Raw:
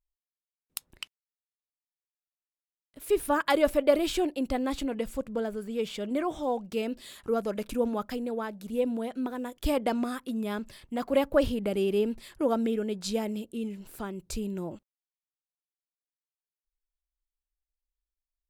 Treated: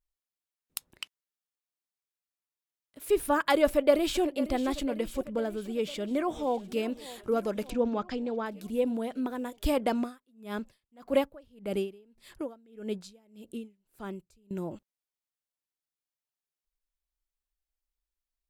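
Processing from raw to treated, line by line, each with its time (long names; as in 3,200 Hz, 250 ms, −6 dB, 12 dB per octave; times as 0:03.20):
0:00.89–0:03.05: high-pass filter 140 Hz 6 dB per octave
0:03.65–0:04.22: delay throw 500 ms, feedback 65%, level −14 dB
0:05.68–0:06.80: delay throw 600 ms, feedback 65%, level −17.5 dB
0:07.70–0:08.46: low-pass filter 6,100 Hz 24 dB per octave
0:09.99–0:14.51: tremolo with a sine in dB 1.7 Hz, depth 33 dB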